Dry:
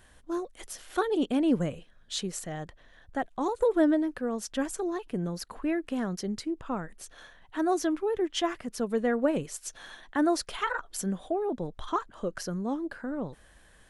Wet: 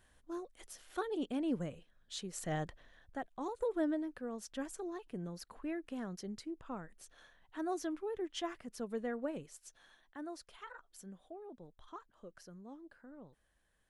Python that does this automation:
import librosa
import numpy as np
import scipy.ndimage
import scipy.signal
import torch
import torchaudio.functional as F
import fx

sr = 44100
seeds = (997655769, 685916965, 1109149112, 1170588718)

y = fx.gain(x, sr, db=fx.line((2.31, -10.5), (2.53, 1.0), (3.21, -11.0), (8.95, -11.0), (10.19, -20.0)))